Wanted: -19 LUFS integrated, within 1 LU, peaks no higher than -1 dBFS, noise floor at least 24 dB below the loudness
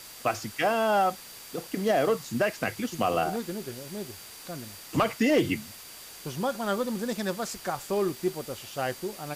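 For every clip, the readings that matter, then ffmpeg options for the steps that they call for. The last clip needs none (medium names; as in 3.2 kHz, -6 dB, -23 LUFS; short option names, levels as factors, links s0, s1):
steady tone 4.7 kHz; tone level -52 dBFS; noise floor -46 dBFS; noise floor target -53 dBFS; loudness -29.0 LUFS; peak level -15.0 dBFS; loudness target -19.0 LUFS
-> -af "bandreject=f=4700:w=30"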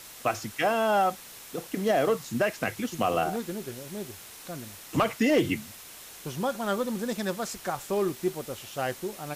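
steady tone not found; noise floor -46 dBFS; noise floor target -53 dBFS
-> -af "afftdn=nr=7:nf=-46"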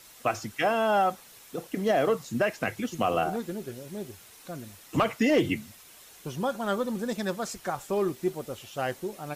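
noise floor -52 dBFS; noise floor target -53 dBFS
-> -af "afftdn=nr=6:nf=-52"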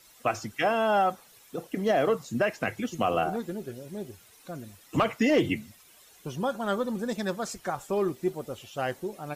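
noise floor -56 dBFS; loudness -29.0 LUFS; peak level -15.0 dBFS; loudness target -19.0 LUFS
-> -af "volume=3.16"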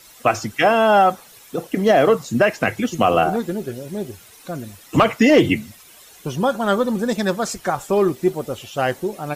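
loudness -19.0 LUFS; peak level -5.0 dBFS; noise floor -46 dBFS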